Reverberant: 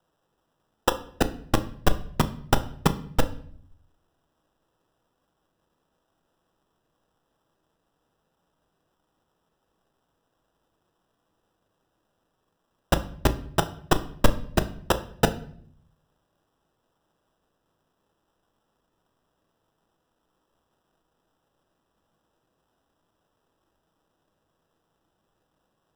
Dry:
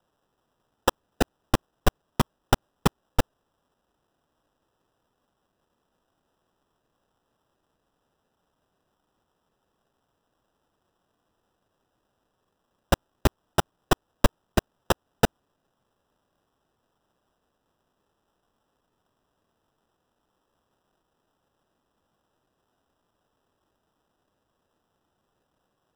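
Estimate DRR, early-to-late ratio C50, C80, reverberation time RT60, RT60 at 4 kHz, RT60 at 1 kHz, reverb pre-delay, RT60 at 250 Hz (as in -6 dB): 9.0 dB, 15.5 dB, 19.5 dB, 0.60 s, 0.50 s, 0.55 s, 6 ms, 0.90 s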